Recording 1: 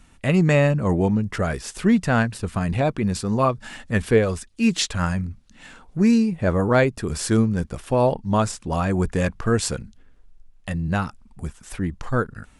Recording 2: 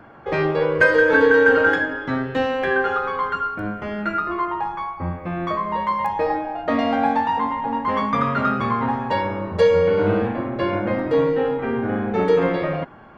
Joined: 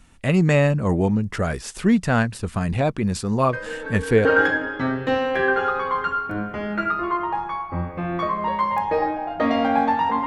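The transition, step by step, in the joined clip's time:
recording 1
3.49 add recording 2 from 0.77 s 0.76 s -17 dB
4.25 switch to recording 2 from 1.53 s

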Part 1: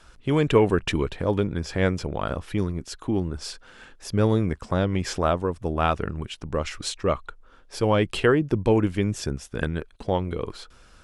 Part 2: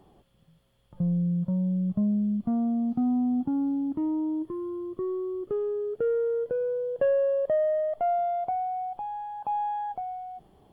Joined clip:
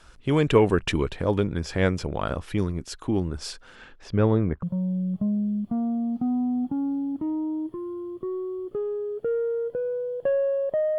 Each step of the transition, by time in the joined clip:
part 1
3.75–4.63 LPF 6100 Hz -> 1200 Hz
4.63 switch to part 2 from 1.39 s

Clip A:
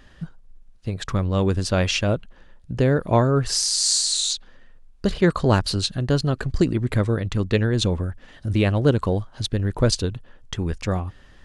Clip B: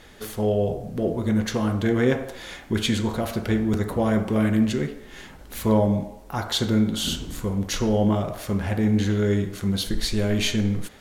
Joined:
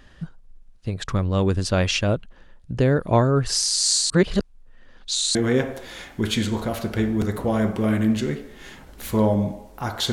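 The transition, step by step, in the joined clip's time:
clip A
4.1–5.35 reverse
5.35 switch to clip B from 1.87 s

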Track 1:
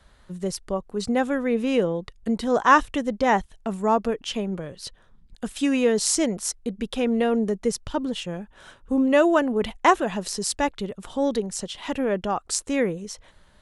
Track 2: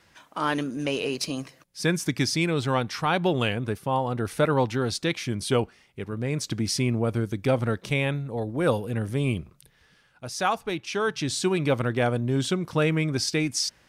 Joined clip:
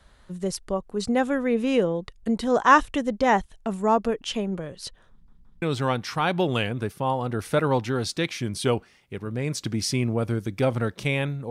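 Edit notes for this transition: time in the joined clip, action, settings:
track 1
5.11 stutter in place 0.17 s, 3 plays
5.62 switch to track 2 from 2.48 s

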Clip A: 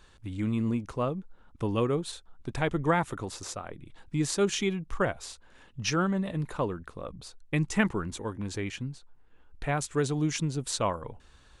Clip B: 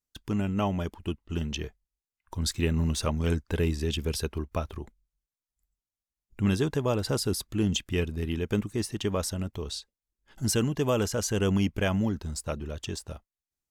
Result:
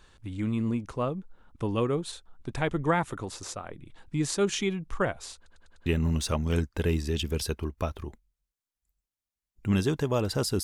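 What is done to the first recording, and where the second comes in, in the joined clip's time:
clip A
5.36 stutter in place 0.10 s, 5 plays
5.86 switch to clip B from 2.6 s

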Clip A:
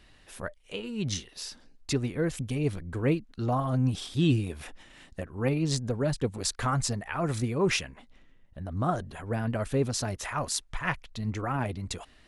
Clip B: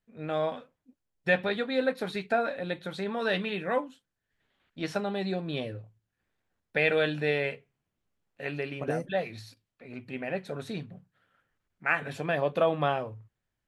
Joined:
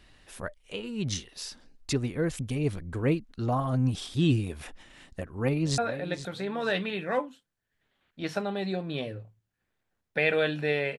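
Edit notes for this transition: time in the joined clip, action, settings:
clip A
5.16–5.78 echo throw 0.47 s, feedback 30%, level -13 dB
5.78 switch to clip B from 2.37 s

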